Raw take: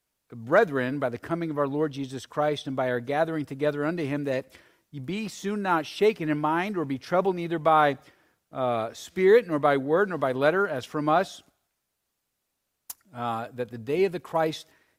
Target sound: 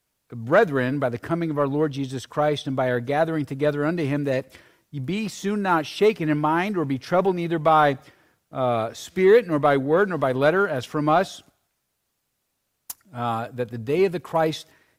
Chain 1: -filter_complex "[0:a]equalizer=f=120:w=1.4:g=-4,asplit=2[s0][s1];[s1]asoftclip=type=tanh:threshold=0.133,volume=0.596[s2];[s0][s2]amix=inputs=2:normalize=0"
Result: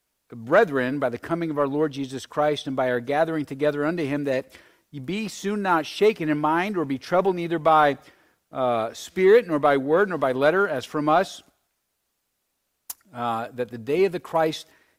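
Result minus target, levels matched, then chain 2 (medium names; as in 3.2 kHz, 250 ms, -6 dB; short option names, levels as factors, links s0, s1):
125 Hz band -5.0 dB
-filter_complex "[0:a]equalizer=f=120:w=1.4:g=4,asplit=2[s0][s1];[s1]asoftclip=type=tanh:threshold=0.133,volume=0.596[s2];[s0][s2]amix=inputs=2:normalize=0"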